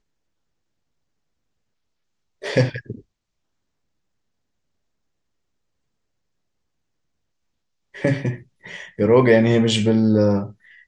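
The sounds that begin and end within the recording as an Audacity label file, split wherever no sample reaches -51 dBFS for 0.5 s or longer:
2.420000	3.020000	sound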